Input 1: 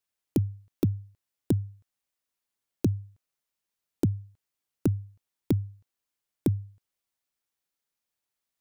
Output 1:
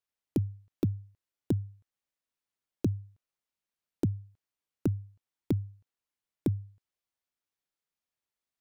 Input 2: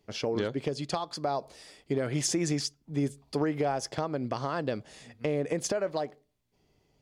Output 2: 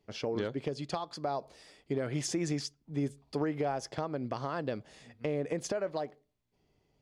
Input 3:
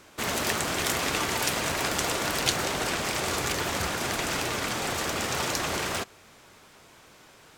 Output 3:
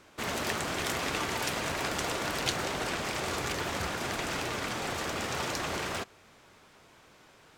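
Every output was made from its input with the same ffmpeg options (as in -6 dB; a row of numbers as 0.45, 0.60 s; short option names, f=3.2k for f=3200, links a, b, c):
-af "highshelf=f=6.2k:g=-7,volume=-3.5dB"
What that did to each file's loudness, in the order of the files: -3.5, -4.0, -5.0 LU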